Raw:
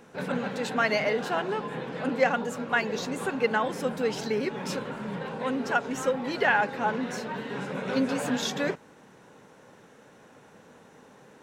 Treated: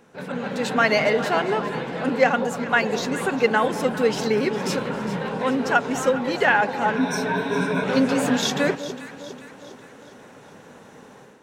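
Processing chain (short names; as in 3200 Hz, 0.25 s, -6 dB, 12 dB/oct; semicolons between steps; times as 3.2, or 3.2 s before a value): 6.96–7.84 ripple EQ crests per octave 1.6, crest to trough 15 dB; echo with dull and thin repeats by turns 0.203 s, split 1000 Hz, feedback 70%, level -11 dB; AGC gain up to 9 dB; gain -2 dB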